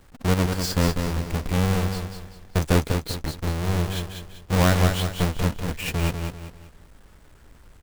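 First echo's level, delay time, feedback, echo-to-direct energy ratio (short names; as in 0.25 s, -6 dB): -6.0 dB, 0.195 s, 36%, -5.5 dB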